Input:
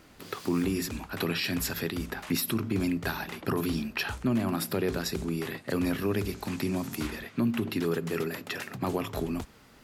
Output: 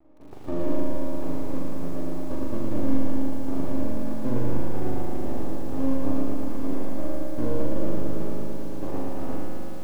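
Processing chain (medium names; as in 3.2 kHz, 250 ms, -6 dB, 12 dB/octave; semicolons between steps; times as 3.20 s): formants flattened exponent 0.3; in parallel at -1.5 dB: compression 8:1, threshold -36 dBFS, peak gain reduction 14 dB; on the sum: saturation -14.5 dBFS, distortion -24 dB; cascade formant filter u; half-wave rectifier; flutter echo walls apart 7 m, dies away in 0.73 s; on a send at -8 dB: reverberation RT60 2.6 s, pre-delay 3 ms; on the sum: bit-crushed delay 113 ms, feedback 80%, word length 10-bit, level -4 dB; trim +8.5 dB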